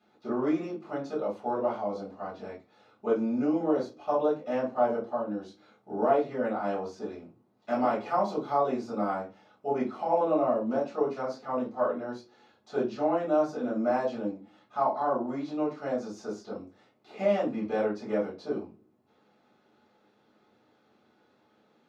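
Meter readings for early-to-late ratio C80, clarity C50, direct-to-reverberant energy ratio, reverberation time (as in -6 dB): 16.5 dB, 9.0 dB, -8.0 dB, no single decay rate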